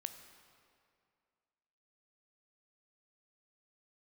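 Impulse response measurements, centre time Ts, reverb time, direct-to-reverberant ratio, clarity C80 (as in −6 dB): 24 ms, 2.3 s, 8.0 dB, 10.0 dB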